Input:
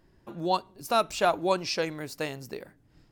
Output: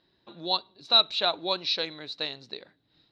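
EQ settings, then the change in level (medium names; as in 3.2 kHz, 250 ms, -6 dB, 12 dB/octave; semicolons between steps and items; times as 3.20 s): high-pass 250 Hz 6 dB/octave; four-pole ladder low-pass 4 kHz, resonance 90%; +8.5 dB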